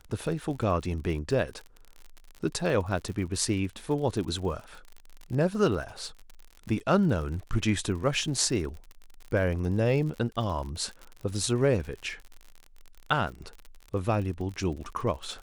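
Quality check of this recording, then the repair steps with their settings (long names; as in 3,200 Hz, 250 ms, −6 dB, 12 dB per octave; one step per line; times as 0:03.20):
surface crackle 56 per second −36 dBFS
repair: click removal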